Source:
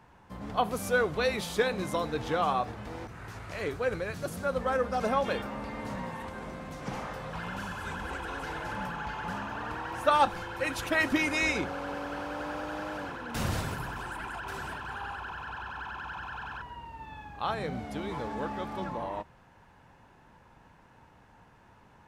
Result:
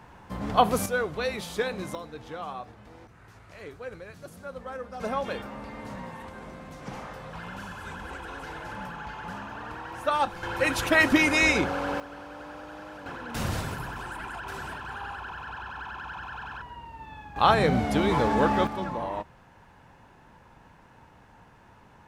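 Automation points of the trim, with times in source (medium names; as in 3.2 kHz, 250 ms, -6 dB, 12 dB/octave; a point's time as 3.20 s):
+7.5 dB
from 0.86 s -1.5 dB
from 1.95 s -9 dB
from 5.00 s -2 dB
from 10.43 s +6.5 dB
from 12.00 s -6 dB
from 13.06 s +1 dB
from 17.36 s +12 dB
from 18.67 s +3.5 dB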